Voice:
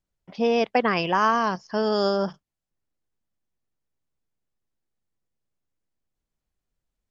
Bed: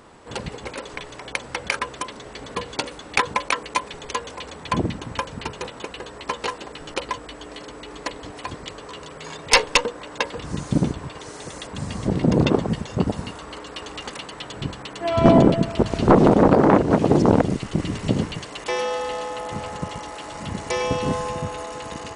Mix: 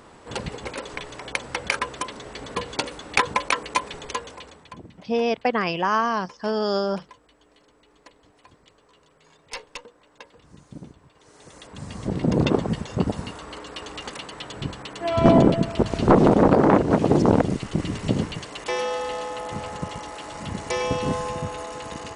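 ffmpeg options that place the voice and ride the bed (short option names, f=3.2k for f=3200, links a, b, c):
-filter_complex "[0:a]adelay=4700,volume=-1dB[a];[1:a]volume=19dB,afade=t=out:st=3.94:d=0.81:silence=0.0944061,afade=t=in:st=11.15:d=1.42:silence=0.112202[b];[a][b]amix=inputs=2:normalize=0"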